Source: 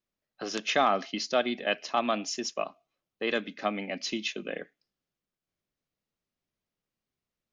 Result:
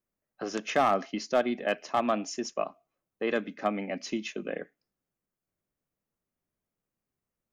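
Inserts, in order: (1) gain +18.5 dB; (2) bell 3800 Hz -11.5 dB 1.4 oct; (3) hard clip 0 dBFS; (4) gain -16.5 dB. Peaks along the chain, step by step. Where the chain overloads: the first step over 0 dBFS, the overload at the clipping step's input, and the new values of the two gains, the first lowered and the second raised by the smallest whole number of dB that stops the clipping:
+6.5, +5.0, 0.0, -16.5 dBFS; step 1, 5.0 dB; step 1 +13.5 dB, step 4 -11.5 dB

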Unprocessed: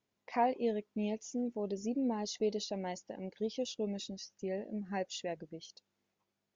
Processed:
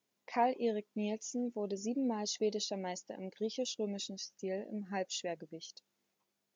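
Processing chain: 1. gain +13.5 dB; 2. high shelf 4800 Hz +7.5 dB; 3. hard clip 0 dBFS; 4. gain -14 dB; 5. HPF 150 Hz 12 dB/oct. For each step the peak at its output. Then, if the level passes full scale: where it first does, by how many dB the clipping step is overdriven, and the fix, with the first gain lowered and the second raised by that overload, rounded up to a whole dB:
-5.5, -5.5, -5.5, -19.5, -19.0 dBFS; no overload

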